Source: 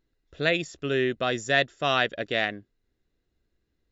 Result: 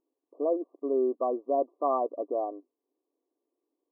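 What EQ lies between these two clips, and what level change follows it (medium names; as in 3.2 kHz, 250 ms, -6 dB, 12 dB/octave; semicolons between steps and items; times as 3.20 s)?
brick-wall FIR band-pass 250–1200 Hz; 0.0 dB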